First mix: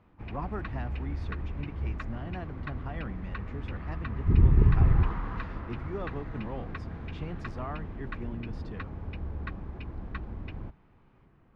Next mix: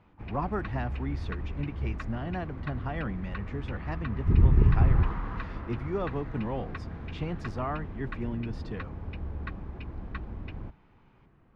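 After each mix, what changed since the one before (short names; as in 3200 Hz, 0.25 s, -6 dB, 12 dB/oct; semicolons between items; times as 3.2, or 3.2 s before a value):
speech +5.5 dB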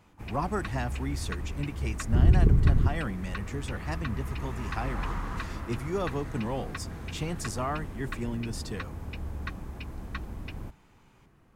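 second sound: entry -2.15 s; master: remove air absorption 310 m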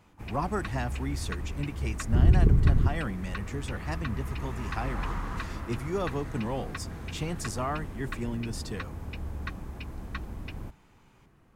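none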